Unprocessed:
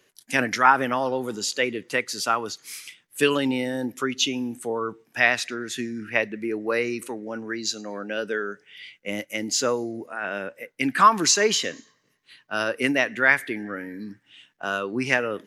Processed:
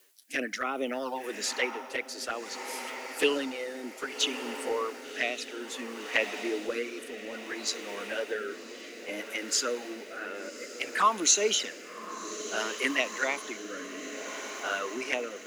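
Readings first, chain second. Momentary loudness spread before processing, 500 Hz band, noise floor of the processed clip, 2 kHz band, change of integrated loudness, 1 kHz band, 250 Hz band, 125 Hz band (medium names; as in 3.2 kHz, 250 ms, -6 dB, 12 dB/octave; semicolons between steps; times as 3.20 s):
15 LU, -6.0 dB, -45 dBFS, -8.0 dB, -7.0 dB, -9.5 dB, -9.5 dB, under -20 dB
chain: Bessel high-pass 360 Hz, order 8; touch-sensitive flanger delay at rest 10.7 ms, full sweep at -18.5 dBFS; on a send: echo that smears into a reverb 1110 ms, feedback 74%, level -11 dB; on the sum: added noise blue -61 dBFS; rotary cabinet horn 0.6 Hz; reverse; upward compressor, threshold -43 dBFS; reverse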